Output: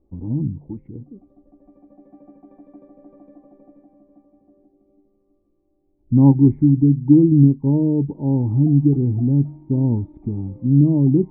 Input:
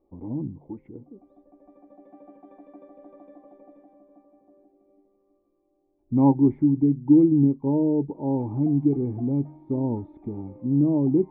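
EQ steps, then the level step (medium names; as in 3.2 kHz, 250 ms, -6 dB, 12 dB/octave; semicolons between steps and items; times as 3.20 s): tone controls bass +12 dB, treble -14 dB; bass shelf 480 Hz +5.5 dB; -4.5 dB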